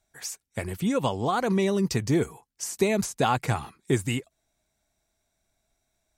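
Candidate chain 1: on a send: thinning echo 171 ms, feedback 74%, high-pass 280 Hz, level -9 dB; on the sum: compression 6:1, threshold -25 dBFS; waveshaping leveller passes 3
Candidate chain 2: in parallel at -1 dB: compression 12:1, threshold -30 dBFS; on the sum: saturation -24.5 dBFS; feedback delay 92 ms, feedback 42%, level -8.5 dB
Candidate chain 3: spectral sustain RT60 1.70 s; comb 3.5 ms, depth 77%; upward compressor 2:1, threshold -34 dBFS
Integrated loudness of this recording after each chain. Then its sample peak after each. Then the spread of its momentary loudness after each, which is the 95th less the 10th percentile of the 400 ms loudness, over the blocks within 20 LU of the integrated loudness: -23.0 LUFS, -29.5 LUFS, -21.5 LUFS; -14.5 dBFS, -20.5 dBFS, -4.0 dBFS; 9 LU, 6 LU, 10 LU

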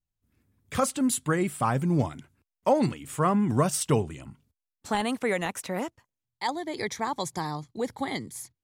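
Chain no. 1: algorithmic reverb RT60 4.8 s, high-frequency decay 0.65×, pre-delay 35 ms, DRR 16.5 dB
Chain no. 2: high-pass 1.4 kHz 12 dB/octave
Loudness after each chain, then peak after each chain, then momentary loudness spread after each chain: -28.0 LUFS, -35.5 LUFS; -11.5 dBFS, -15.5 dBFS; 14 LU, 17 LU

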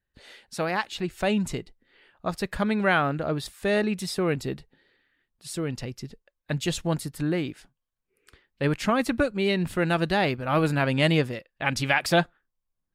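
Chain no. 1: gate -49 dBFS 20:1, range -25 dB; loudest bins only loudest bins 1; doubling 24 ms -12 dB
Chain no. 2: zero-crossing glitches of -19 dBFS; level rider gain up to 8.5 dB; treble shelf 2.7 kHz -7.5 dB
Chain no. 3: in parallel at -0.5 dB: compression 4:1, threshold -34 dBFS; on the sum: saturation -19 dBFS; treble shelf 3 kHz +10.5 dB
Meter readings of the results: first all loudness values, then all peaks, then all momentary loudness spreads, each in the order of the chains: -35.5 LUFS, -20.0 LUFS, -25.0 LUFS; -22.0 dBFS, -3.5 dBFS, -9.5 dBFS; 12 LU, 9 LU, 10 LU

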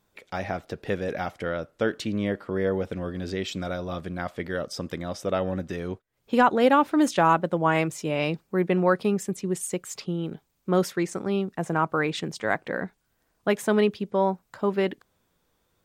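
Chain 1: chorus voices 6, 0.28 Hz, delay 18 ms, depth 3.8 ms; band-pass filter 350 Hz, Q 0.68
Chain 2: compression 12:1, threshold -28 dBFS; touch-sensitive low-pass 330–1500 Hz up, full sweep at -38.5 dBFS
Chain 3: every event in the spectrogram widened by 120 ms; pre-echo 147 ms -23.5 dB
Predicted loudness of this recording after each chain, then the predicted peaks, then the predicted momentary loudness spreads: -31.5 LUFS, -32.0 LUFS, -22.0 LUFS; -12.0 dBFS, -12.0 dBFS, -2.5 dBFS; 14 LU, 7 LU, 12 LU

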